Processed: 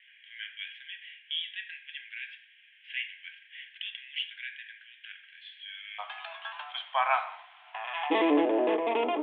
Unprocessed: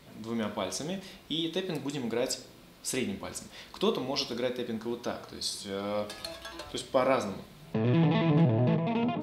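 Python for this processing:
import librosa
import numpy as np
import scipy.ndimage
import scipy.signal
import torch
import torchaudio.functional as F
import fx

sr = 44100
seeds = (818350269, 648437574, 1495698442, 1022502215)

y = fx.cheby1_bandpass(x, sr, low_hz=fx.steps((0.0, 1600.0), (5.98, 720.0), (8.1, 290.0)), high_hz=3300.0, order=5)
y = y * librosa.db_to_amplitude(6.0)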